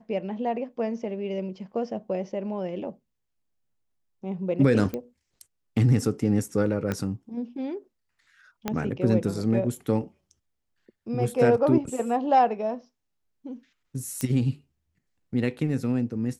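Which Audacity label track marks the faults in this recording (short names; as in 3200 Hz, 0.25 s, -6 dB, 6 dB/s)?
4.940000	4.940000	pop -18 dBFS
6.920000	6.920000	pop -15 dBFS
8.680000	8.680000	pop -12 dBFS
14.210000	14.210000	pop -13 dBFS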